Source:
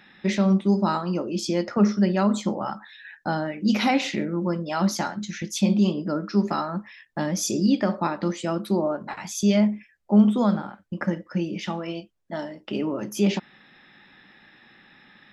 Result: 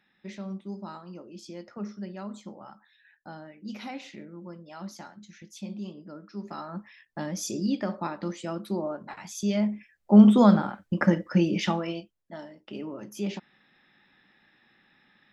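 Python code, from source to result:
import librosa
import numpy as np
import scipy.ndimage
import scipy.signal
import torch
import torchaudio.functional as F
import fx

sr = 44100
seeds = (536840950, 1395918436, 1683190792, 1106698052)

y = fx.gain(x, sr, db=fx.line((6.35, -17.0), (6.78, -7.0), (9.54, -7.0), (10.31, 4.0), (11.66, 4.0), (11.95, -2.0), (12.38, -10.0)))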